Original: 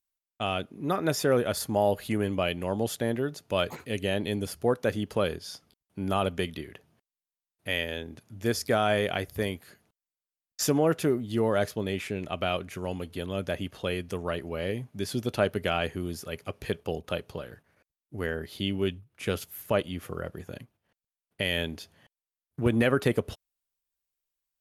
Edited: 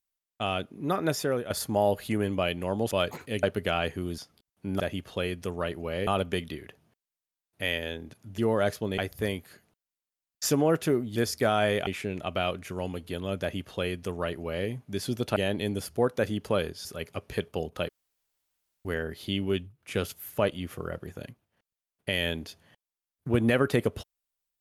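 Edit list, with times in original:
1.05–1.50 s: fade out, to -10 dB
2.91–3.50 s: delete
4.02–5.51 s: swap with 15.42–16.17 s
8.44–9.15 s: swap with 11.33–11.93 s
13.47–14.74 s: copy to 6.13 s
17.21–18.17 s: room tone

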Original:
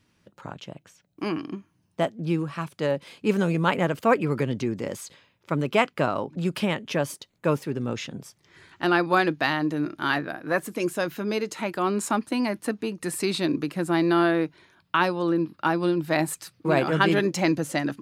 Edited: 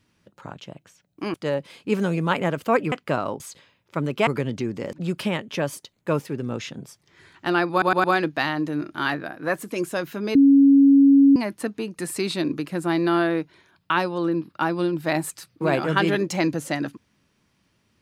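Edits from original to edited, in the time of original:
1.34–2.71 s: delete
4.29–4.95 s: swap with 5.82–6.30 s
9.08 s: stutter 0.11 s, 4 plays
11.39–12.40 s: bleep 277 Hz -10 dBFS

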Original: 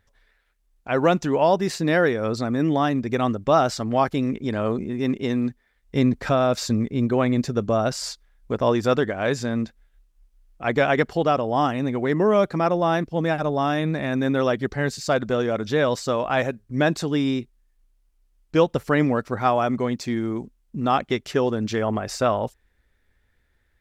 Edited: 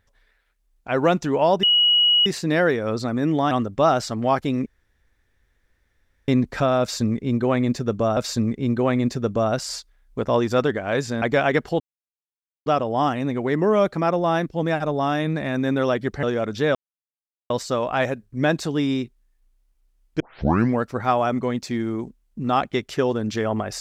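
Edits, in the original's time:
1.63 s: add tone 2.91 kHz -13.5 dBFS 0.63 s
2.88–3.20 s: delete
4.35–5.97 s: room tone
6.50–7.86 s: loop, 2 plays
9.55–10.66 s: delete
11.24 s: insert silence 0.86 s
14.81–15.35 s: delete
15.87 s: insert silence 0.75 s
18.57 s: tape start 0.55 s

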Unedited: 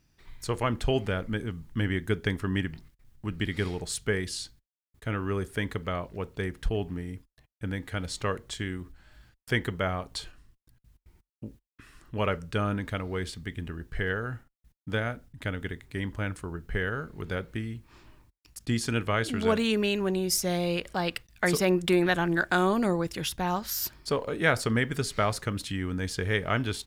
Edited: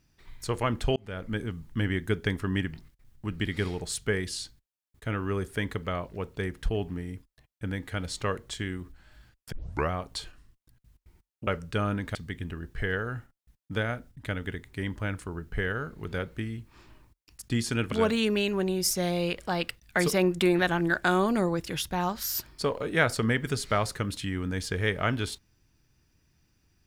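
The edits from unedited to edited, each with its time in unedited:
0.96–1.37 s: fade in linear
9.52 s: tape start 0.39 s
11.47–12.27 s: delete
12.95–13.32 s: delete
19.09–19.39 s: delete

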